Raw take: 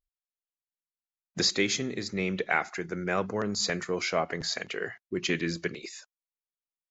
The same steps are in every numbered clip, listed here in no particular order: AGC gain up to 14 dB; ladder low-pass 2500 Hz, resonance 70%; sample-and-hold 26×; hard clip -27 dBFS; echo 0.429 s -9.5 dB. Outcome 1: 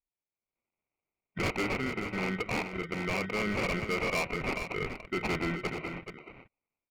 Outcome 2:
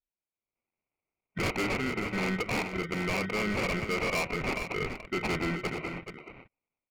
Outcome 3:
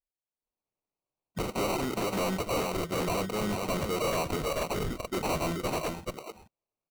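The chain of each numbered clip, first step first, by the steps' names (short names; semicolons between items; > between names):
AGC > sample-and-hold > ladder low-pass > hard clip > echo; sample-and-hold > ladder low-pass > AGC > hard clip > echo; ladder low-pass > sample-and-hold > echo > AGC > hard clip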